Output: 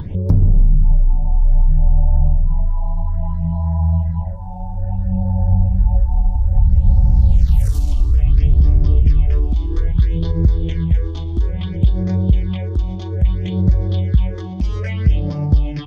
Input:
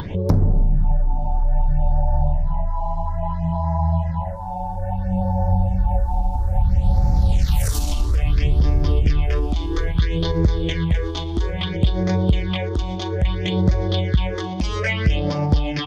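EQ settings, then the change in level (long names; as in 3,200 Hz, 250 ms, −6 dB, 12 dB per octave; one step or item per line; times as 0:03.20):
low-shelf EQ 200 Hz +8 dB
low-shelf EQ 400 Hz +8.5 dB
−10.5 dB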